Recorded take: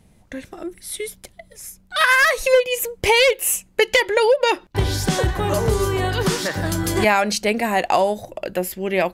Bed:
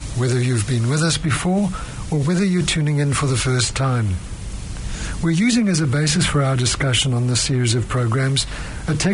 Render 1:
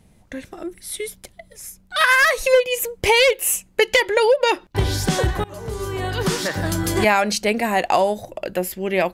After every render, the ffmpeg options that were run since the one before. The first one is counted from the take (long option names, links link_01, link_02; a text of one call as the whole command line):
ffmpeg -i in.wav -filter_complex "[0:a]asplit=2[link_01][link_02];[link_01]atrim=end=5.44,asetpts=PTS-STARTPTS,afade=type=out:start_time=5.436:duration=0.004:curve=hsin:silence=0.0668344[link_03];[link_02]atrim=start=5.44,asetpts=PTS-STARTPTS,afade=type=in:duration=0.97:silence=0.0668344[link_04];[link_03][link_04]concat=n=2:v=0:a=1" out.wav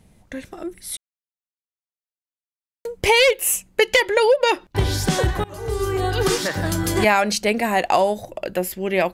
ffmpeg -i in.wav -filter_complex "[0:a]asettb=1/sr,asplit=3[link_01][link_02][link_03];[link_01]atrim=end=5.564[link_04];[link_02]atrim=start=5.56:end=6.38,asetpts=PTS-STARTPTS,afade=type=in:duration=0.004:curve=qsin,afade=type=out:start_time=0.816:duration=0.004:curve=qsin,aecho=1:1:2.5:0.82,atrim=end_sample=36162[link_05];[link_03]atrim=start=6.376[link_06];[link_04][link_05]acrossfade=duration=0.004:curve1=hsin:curve2=qsin[link_07];[link_07][link_06]acrossfade=duration=0.004:curve1=qsin:curve2=hsin,asplit=3[link_08][link_09][link_10];[link_08]atrim=end=0.97,asetpts=PTS-STARTPTS,afade=type=out:start_time=0.966:duration=0.004:curve=hsin[link_11];[link_09]atrim=start=0.97:end=2.85,asetpts=PTS-STARTPTS,volume=0[link_12];[link_10]atrim=start=2.85,asetpts=PTS-STARTPTS,afade=type=in:duration=0.004:curve=hsin[link_13];[link_11][link_12][link_13]concat=n=3:v=0:a=1" out.wav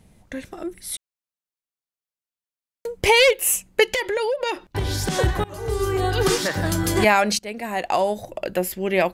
ffmpeg -i in.wav -filter_complex "[0:a]asettb=1/sr,asplit=3[link_01][link_02][link_03];[link_01]atrim=end=3.934[link_04];[link_02]atrim=start=3.93:end=5.19,asetpts=PTS-STARTPTS,afade=type=in:duration=0.004:curve=qsin,afade=type=out:start_time=1.256:duration=0.004:curve=qsin,acompressor=threshold=-20dB:ratio=6:attack=3.2:release=140:knee=1:detection=peak[link_05];[link_03]atrim=start=5.186[link_06];[link_04][link_05]acrossfade=duration=0.004:curve1=hsin:curve2=qsin[link_07];[link_07][link_06]acrossfade=duration=0.004:curve1=qsin:curve2=hsin,asplit=2[link_08][link_09];[link_08]atrim=end=7.39,asetpts=PTS-STARTPTS,afade=type=out:start_time=7.386:duration=0.004:curve=hsin:silence=0.149624[link_10];[link_09]atrim=start=7.39,asetpts=PTS-STARTPTS,afade=type=in:duration=0.95:silence=0.149624[link_11];[link_10][link_11]concat=n=2:v=0:a=1" out.wav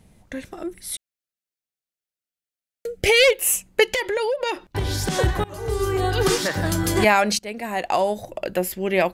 ffmpeg -i in.wav -filter_complex "[0:a]asettb=1/sr,asplit=3[link_01][link_02][link_03];[link_01]atrim=end=0.944[link_04];[link_02]atrim=start=0.94:end=3.24,asetpts=PTS-STARTPTS,afade=type=in:duration=0.004:curve=qsin,afade=type=out:start_time=2.296:duration=0.004:curve=qsin,asuperstop=centerf=1000:order=4:qfactor=2.1[link_05];[link_03]atrim=start=3.236[link_06];[link_04][link_05]acrossfade=duration=0.004:curve1=hsin:curve2=qsin[link_07];[link_07][link_06]acrossfade=duration=0.004:curve1=qsin:curve2=hsin" out.wav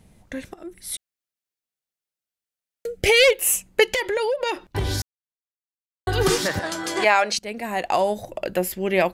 ffmpeg -i in.wav -filter_complex "[0:a]asettb=1/sr,asplit=3[link_01][link_02][link_03];[link_01]atrim=end=6.594[link_04];[link_02]atrim=start=6.59:end=7.38,asetpts=PTS-STARTPTS,afade=type=in:duration=0.004:curve=qsin,afade=type=out:start_time=0.786:duration=0.004:curve=qsin,highpass=450,lowpass=7200[link_05];[link_03]atrim=start=7.376[link_06];[link_04][link_05]acrossfade=duration=0.004:curve1=hsin:curve2=qsin[link_07];[link_07][link_06]acrossfade=duration=0.004:curve1=qsin:curve2=hsin,asplit=4[link_08][link_09][link_10][link_11];[link_08]atrim=end=0.54,asetpts=PTS-STARTPTS,afade=type=out:start_time=0.536:duration=0.004:curve=hsin:silence=0.211349[link_12];[link_09]atrim=start=0.54:end=5.02,asetpts=PTS-STARTPTS,afade=type=in:duration=0.4:silence=0.211349,afade=type=out:start_time=4.476:duration=0.004:curve=hsin[link_13];[link_10]atrim=start=5.02:end=6.07,asetpts=PTS-STARTPTS,volume=0[link_14];[link_11]atrim=start=6.07,asetpts=PTS-STARTPTS,afade=type=in:duration=0.004:curve=hsin[link_15];[link_12][link_13][link_14][link_15]concat=n=4:v=0:a=1" out.wav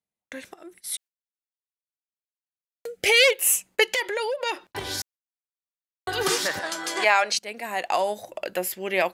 ffmpeg -i in.wav -af "agate=range=-32dB:threshold=-44dB:ratio=16:detection=peak,highpass=frequency=710:poles=1" out.wav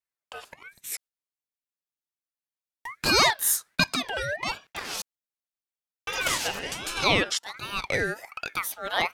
ffmpeg -i in.wav -af "aeval=exprs='val(0)*sin(2*PI*1500*n/s+1500*0.35/1.3*sin(2*PI*1.3*n/s))':channel_layout=same" out.wav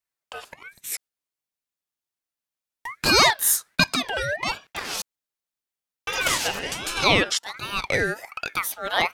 ffmpeg -i in.wav -af "volume=3.5dB" out.wav